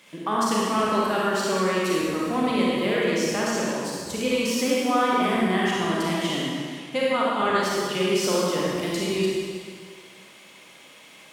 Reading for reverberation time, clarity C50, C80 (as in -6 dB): 2.0 s, -3.5 dB, -1.5 dB